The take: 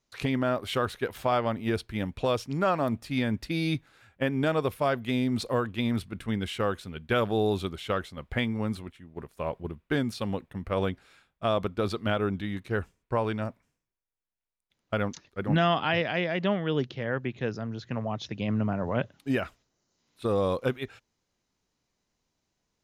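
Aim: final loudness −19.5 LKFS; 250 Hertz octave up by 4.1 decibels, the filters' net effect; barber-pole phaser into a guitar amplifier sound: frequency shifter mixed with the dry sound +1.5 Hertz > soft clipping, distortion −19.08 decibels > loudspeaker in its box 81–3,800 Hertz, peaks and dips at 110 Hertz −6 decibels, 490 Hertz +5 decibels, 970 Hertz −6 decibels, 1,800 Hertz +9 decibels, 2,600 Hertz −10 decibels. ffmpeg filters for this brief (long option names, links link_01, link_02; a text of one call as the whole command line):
ffmpeg -i in.wav -filter_complex "[0:a]equalizer=frequency=250:width_type=o:gain=5,asplit=2[link_01][link_02];[link_02]afreqshift=1.5[link_03];[link_01][link_03]amix=inputs=2:normalize=1,asoftclip=threshold=-19.5dB,highpass=81,equalizer=frequency=110:width_type=q:width=4:gain=-6,equalizer=frequency=490:width_type=q:width=4:gain=5,equalizer=frequency=970:width_type=q:width=4:gain=-6,equalizer=frequency=1800:width_type=q:width=4:gain=9,equalizer=frequency=2600:width_type=q:width=4:gain=-10,lowpass=frequency=3800:width=0.5412,lowpass=frequency=3800:width=1.3066,volume=11.5dB" out.wav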